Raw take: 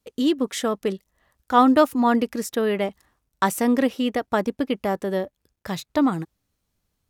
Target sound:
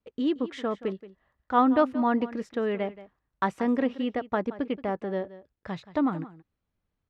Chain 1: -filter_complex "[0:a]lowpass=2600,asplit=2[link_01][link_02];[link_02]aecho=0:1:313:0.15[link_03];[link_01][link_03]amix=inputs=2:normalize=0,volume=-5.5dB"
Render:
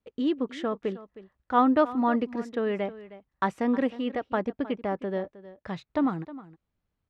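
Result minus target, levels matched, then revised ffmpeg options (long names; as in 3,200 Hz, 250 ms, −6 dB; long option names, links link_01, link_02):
echo 137 ms late
-filter_complex "[0:a]lowpass=2600,asplit=2[link_01][link_02];[link_02]aecho=0:1:176:0.15[link_03];[link_01][link_03]amix=inputs=2:normalize=0,volume=-5.5dB"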